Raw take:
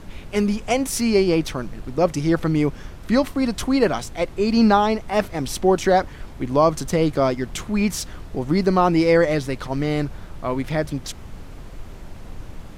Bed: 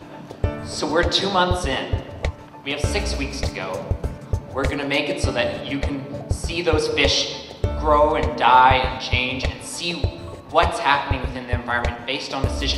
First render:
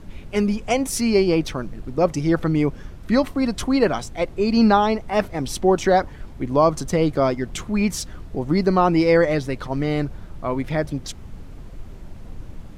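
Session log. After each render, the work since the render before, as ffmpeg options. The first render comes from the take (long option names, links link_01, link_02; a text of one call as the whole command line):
ffmpeg -i in.wav -af "afftdn=noise_reduction=6:noise_floor=-39" out.wav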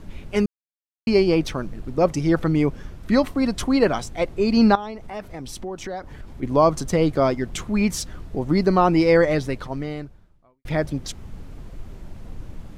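ffmpeg -i in.wav -filter_complex "[0:a]asettb=1/sr,asplit=3[link_01][link_02][link_03];[link_01]atrim=end=4.754[link_04];[link_02]atrim=start=4.75:end=6.43,asetpts=PTS-STARTPTS,afade=type=in:duration=0.004:curve=qsin,afade=type=out:start_time=1.676:duration=0.004:curve=qsin,acompressor=threshold=-33dB:ratio=3:attack=3.2:release=140:knee=1:detection=peak[link_05];[link_03]atrim=start=6.426[link_06];[link_04][link_05]acrossfade=duration=0.004:curve1=hsin:curve2=qsin[link_07];[link_07][link_06]acrossfade=duration=0.004:curve1=qsin:curve2=hsin,asplit=4[link_08][link_09][link_10][link_11];[link_08]atrim=end=0.46,asetpts=PTS-STARTPTS,afade=type=out:start_time=0.456:duration=0.004:curve=hsin[link_12];[link_09]atrim=start=0.46:end=1.07,asetpts=PTS-STARTPTS,volume=0[link_13];[link_10]atrim=start=1.07:end=10.65,asetpts=PTS-STARTPTS,afade=type=in:duration=0.004:curve=hsin,afade=type=out:start_time=8.42:duration=1.16:curve=qua[link_14];[link_11]atrim=start=10.65,asetpts=PTS-STARTPTS,afade=type=in:duration=0.004:curve=hsin[link_15];[link_12][link_13][link_14][link_15]concat=n=4:v=0:a=1" out.wav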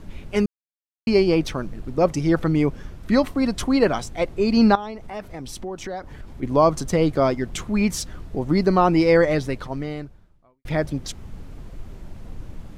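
ffmpeg -i in.wav -af anull out.wav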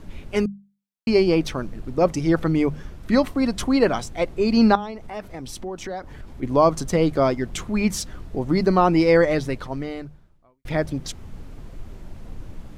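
ffmpeg -i in.wav -af "bandreject=frequency=50:width_type=h:width=6,bandreject=frequency=100:width_type=h:width=6,bandreject=frequency=150:width_type=h:width=6,bandreject=frequency=200:width_type=h:width=6" out.wav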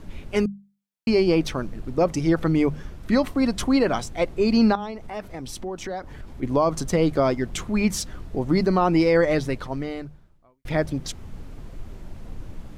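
ffmpeg -i in.wav -af "alimiter=limit=-10.5dB:level=0:latency=1:release=83" out.wav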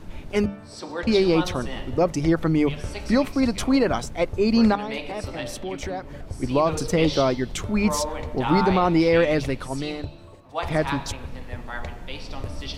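ffmpeg -i in.wav -i bed.wav -filter_complex "[1:a]volume=-12dB[link_01];[0:a][link_01]amix=inputs=2:normalize=0" out.wav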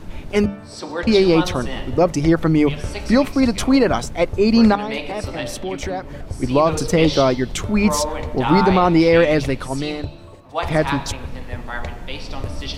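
ffmpeg -i in.wav -af "volume=5dB" out.wav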